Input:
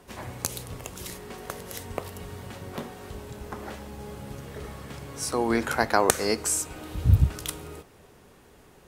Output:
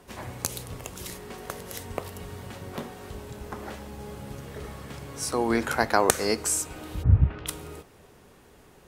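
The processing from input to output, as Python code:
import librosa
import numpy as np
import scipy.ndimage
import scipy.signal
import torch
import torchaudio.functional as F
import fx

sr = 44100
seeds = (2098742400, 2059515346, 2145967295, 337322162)

y = fx.lowpass(x, sr, hz=fx.line((7.02, 1700.0), (7.46, 3400.0)), slope=24, at=(7.02, 7.46), fade=0.02)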